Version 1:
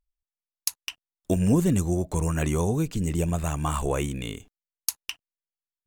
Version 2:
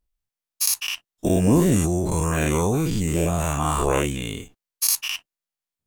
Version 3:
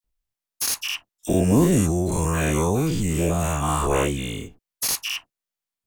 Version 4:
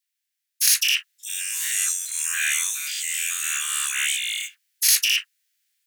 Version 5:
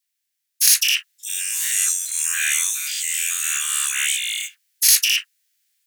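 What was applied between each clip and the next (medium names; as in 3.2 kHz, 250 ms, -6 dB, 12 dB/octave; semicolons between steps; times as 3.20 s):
every event in the spectrogram widened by 120 ms
phase dispersion lows, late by 45 ms, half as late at 1.7 kHz; slew-rate limiter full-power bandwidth 820 Hz
steep high-pass 1.6 kHz 48 dB/octave; transient shaper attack -5 dB, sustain +9 dB; trim +8 dB
tone controls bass +3 dB, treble +3 dB; trim +1 dB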